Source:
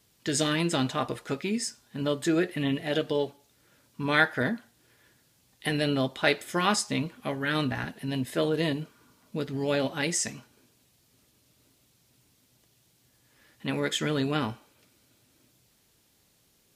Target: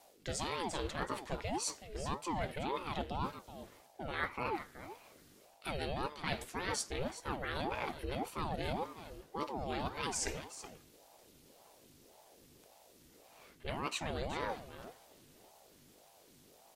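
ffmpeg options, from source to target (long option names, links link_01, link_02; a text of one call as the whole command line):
ffmpeg -i in.wav -af "areverse,acompressor=threshold=-37dB:ratio=5,areverse,aeval=exprs='val(0)+0.000501*(sin(2*PI*50*n/s)+sin(2*PI*2*50*n/s)/2+sin(2*PI*3*50*n/s)/3+sin(2*PI*4*50*n/s)/4+sin(2*PI*5*50*n/s)/5)':channel_layout=same,aecho=1:1:375:0.237,aeval=exprs='val(0)*sin(2*PI*470*n/s+470*0.6/1.8*sin(2*PI*1.8*n/s))':channel_layout=same,volume=4dB" out.wav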